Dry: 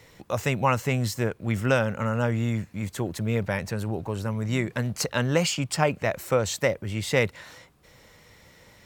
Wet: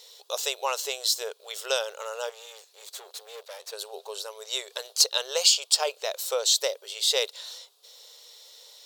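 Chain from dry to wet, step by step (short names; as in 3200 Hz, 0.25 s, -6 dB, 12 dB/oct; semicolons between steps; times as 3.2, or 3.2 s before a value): resonant high shelf 2800 Hz +10.5 dB, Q 3; 2.29–3.73 tube stage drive 31 dB, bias 0.65; brick-wall FIR high-pass 390 Hz; gain -4 dB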